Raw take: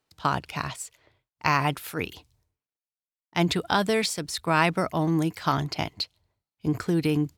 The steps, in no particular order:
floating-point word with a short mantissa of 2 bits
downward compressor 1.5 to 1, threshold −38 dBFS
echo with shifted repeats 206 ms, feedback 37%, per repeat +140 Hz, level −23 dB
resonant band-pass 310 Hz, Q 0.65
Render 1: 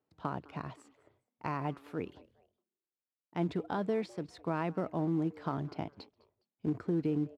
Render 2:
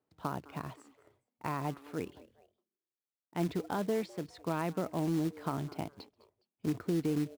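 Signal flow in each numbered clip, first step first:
downward compressor, then floating-point word with a short mantissa, then echo with shifted repeats, then resonant band-pass
echo with shifted repeats, then downward compressor, then resonant band-pass, then floating-point word with a short mantissa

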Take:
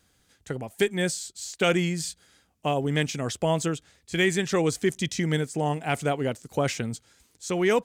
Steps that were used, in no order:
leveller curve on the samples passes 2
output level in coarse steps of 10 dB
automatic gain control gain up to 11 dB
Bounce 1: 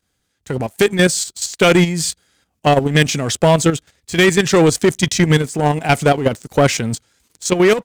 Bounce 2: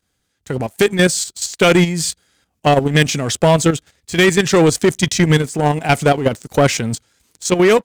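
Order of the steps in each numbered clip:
leveller curve on the samples, then automatic gain control, then output level in coarse steps
automatic gain control, then leveller curve on the samples, then output level in coarse steps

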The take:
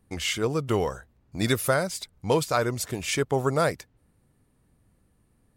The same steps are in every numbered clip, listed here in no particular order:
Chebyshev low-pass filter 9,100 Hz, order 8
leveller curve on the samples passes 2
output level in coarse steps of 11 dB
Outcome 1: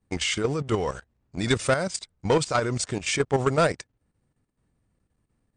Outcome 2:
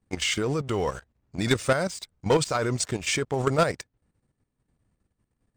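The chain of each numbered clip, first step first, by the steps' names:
output level in coarse steps, then leveller curve on the samples, then Chebyshev low-pass filter
Chebyshev low-pass filter, then output level in coarse steps, then leveller curve on the samples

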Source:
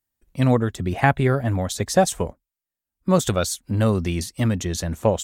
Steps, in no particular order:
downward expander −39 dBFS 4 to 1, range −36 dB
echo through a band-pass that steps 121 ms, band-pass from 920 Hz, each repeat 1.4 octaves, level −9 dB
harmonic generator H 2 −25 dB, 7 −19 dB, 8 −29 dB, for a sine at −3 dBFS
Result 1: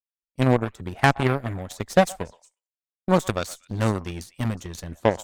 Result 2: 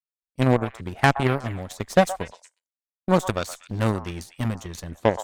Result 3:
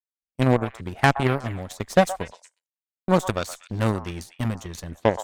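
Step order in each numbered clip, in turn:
downward expander, then echo through a band-pass that steps, then harmonic generator
downward expander, then harmonic generator, then echo through a band-pass that steps
harmonic generator, then downward expander, then echo through a band-pass that steps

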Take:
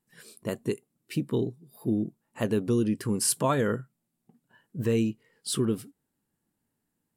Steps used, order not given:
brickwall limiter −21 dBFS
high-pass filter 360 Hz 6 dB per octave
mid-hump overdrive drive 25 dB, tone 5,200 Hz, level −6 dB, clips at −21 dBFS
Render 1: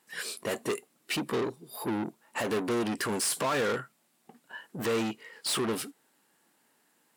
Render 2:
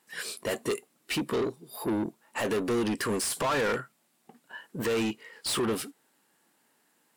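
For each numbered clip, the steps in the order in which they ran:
mid-hump overdrive, then high-pass filter, then brickwall limiter
high-pass filter, then brickwall limiter, then mid-hump overdrive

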